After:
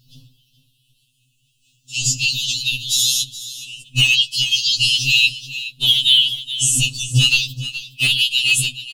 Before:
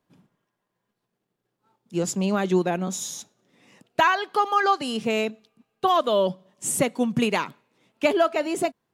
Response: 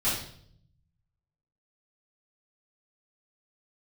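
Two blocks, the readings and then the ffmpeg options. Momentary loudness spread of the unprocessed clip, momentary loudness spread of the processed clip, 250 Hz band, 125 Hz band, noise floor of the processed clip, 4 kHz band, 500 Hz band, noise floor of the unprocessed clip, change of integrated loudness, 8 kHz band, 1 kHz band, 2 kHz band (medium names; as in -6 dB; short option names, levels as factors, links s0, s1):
10 LU, 14 LU, -10.0 dB, +10.0 dB, -64 dBFS, +21.5 dB, under -25 dB, -80 dBFS, +8.5 dB, +13.0 dB, under -25 dB, +10.0 dB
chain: -filter_complex "[0:a]afftfilt=real='re*pow(10,8/40*sin(2*PI*(0.58*log(max(b,1)*sr/1024/100)/log(2)-(-0.4)*(pts-256)/sr)))':imag='im*pow(10,8/40*sin(2*PI*(0.58*log(max(b,1)*sr/1024/100)/log(2)-(-0.4)*(pts-256)/sr)))':win_size=1024:overlap=0.75,bandreject=f=47.73:t=h:w=4,bandreject=f=95.46:t=h:w=4,bandreject=f=143.19:t=h:w=4,bandreject=f=190.92:t=h:w=4,bandreject=f=238.65:t=h:w=4,bandreject=f=286.38:t=h:w=4,bandreject=f=334.11:t=h:w=4,bandreject=f=381.84:t=h:w=4,bandreject=f=429.57:t=h:w=4,bandreject=f=477.3:t=h:w=4,bandreject=f=525.03:t=h:w=4,bandreject=f=572.76:t=h:w=4,bandreject=f=620.49:t=h:w=4,bandreject=f=668.22:t=h:w=4,bandreject=f=715.95:t=h:w=4,bandreject=f=763.68:t=h:w=4,bandreject=f=811.41:t=h:w=4,bandreject=f=859.14:t=h:w=4,bandreject=f=906.87:t=h:w=4,bandreject=f=954.6:t=h:w=4,bandreject=f=1002.33:t=h:w=4,bandreject=f=1050.06:t=h:w=4,bandreject=f=1097.79:t=h:w=4,bandreject=f=1145.52:t=h:w=4,bandreject=f=1193.25:t=h:w=4,bandreject=f=1240.98:t=h:w=4,bandreject=f=1288.71:t=h:w=4,bandreject=f=1336.44:t=h:w=4,afftfilt=real='re*(1-between(b*sr/4096,110,2600))':imag='im*(1-between(b*sr/4096,110,2600))':win_size=4096:overlap=0.75,equalizer=f=3900:t=o:w=2.6:g=3,acrossover=split=2700[s0][s1];[s1]acompressor=threshold=0.02:ratio=4:attack=1:release=60[s2];[s0][s2]amix=inputs=2:normalize=0,highshelf=f=2400:g=-7.5,acrossover=split=1200[s3][s4];[s3]acontrast=62[s5];[s5][s4]amix=inputs=2:normalize=0,volume=37.6,asoftclip=hard,volume=0.0266,afftfilt=real='hypot(re,im)*cos(2*PI*random(0))':imag='hypot(re,im)*sin(2*PI*random(1))':win_size=512:overlap=0.75,aecho=1:1:422:0.178,alimiter=level_in=63.1:limit=0.891:release=50:level=0:latency=1,afftfilt=real='re*2.45*eq(mod(b,6),0)':imag='im*2.45*eq(mod(b,6),0)':win_size=2048:overlap=0.75,volume=0.891"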